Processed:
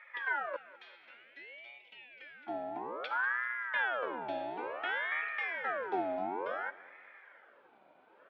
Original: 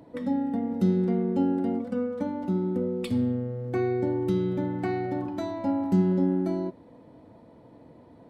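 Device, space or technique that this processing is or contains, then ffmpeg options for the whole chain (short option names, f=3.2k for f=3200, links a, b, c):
voice changer toy: -filter_complex "[0:a]asettb=1/sr,asplit=3[a][b][c];[a]atrim=end=0.564[d];[b]atrim=start=0.56:end=2.47,asetpts=PTS-STARTPTS,afade=t=in:d=0.004:c=qsin,afade=t=out:st=1.906:d=0.004:c=qsin,highpass=f=1k:w=0.5412,highpass=f=1k:w=1.3066[e];[c]atrim=start=2.466[f];[d][e]acrossfade=d=0.004:c1=hsin:c2=qsin[g];[g][f]acrossfade=d=0.004:c1=qsin:c2=hsin,aeval=exprs='val(0)*sin(2*PI*1000*n/s+1000*0.55/0.57*sin(2*PI*0.57*n/s))':c=same,highpass=450,equalizer=f=530:t=q:w=4:g=4,equalizer=f=750:t=q:w=4:g=-3,equalizer=f=1.1k:t=q:w=4:g=-8,equalizer=f=1.6k:t=q:w=4:g=4,equalizer=f=2.3k:t=q:w=4:g=9,equalizer=f=3.3k:t=q:w=4:g=7,lowpass=f=3.9k:w=0.5412,lowpass=f=3.9k:w=1.3066,aecho=1:1:195|390|585|780:0.1|0.05|0.025|0.0125,volume=-5dB"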